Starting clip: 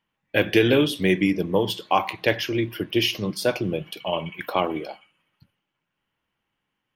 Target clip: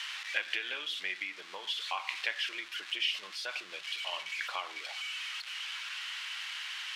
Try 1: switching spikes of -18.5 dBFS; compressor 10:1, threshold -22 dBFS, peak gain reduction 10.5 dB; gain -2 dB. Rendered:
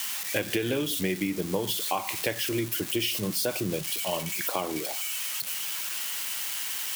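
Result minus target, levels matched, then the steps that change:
2000 Hz band -7.0 dB
add after compressor: Butterworth band-pass 2100 Hz, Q 0.79

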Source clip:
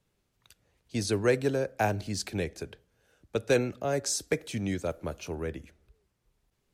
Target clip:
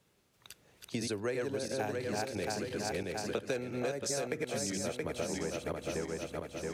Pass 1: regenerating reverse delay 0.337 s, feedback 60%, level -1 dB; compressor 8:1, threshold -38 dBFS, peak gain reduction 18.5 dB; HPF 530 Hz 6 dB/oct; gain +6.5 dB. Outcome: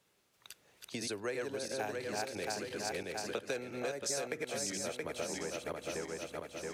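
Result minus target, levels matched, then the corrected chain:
125 Hz band -6.0 dB
regenerating reverse delay 0.337 s, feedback 60%, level -1 dB; compressor 8:1, threshold -38 dBFS, peak gain reduction 18.5 dB; HPF 160 Hz 6 dB/oct; gain +6.5 dB

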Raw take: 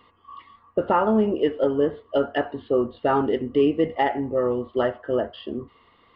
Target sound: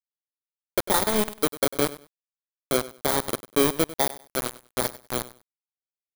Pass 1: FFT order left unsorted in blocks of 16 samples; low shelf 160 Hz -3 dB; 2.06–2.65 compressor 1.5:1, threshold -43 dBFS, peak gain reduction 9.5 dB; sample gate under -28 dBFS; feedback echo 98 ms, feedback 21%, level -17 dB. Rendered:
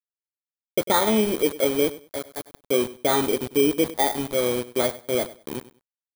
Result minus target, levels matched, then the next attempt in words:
sample gate: distortion -15 dB
FFT order left unsorted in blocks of 16 samples; low shelf 160 Hz -3 dB; 2.06–2.65 compressor 1.5:1, threshold -43 dBFS, peak gain reduction 9.5 dB; sample gate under -16 dBFS; feedback echo 98 ms, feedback 21%, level -17 dB

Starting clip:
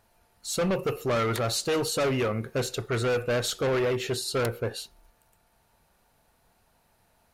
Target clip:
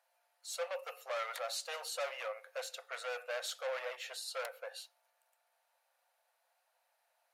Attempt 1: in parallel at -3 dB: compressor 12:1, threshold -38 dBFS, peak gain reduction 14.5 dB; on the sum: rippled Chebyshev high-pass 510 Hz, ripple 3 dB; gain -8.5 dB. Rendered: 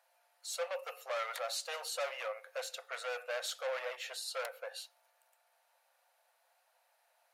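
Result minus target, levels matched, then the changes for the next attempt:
compressor: peak gain reduction +14.5 dB
remove: compressor 12:1, threshold -38 dBFS, peak gain reduction 14.5 dB

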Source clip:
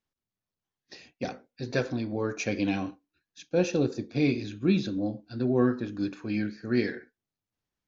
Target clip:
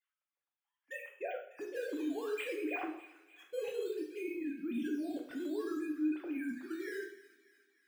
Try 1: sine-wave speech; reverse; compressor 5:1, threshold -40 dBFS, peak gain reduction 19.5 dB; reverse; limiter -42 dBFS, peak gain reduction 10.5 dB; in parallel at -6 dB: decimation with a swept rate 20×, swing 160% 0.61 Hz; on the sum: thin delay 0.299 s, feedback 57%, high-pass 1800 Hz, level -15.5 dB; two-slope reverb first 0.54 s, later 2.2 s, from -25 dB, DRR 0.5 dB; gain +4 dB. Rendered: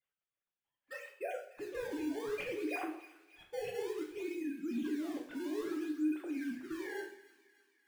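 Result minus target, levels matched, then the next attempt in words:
decimation with a swept rate: distortion +9 dB
sine-wave speech; reverse; compressor 5:1, threshold -40 dBFS, peak gain reduction 19.5 dB; reverse; limiter -42 dBFS, peak gain reduction 10.5 dB; in parallel at -6 dB: decimation with a swept rate 7×, swing 160% 0.61 Hz; on the sum: thin delay 0.299 s, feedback 57%, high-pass 1800 Hz, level -15.5 dB; two-slope reverb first 0.54 s, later 2.2 s, from -25 dB, DRR 0.5 dB; gain +4 dB

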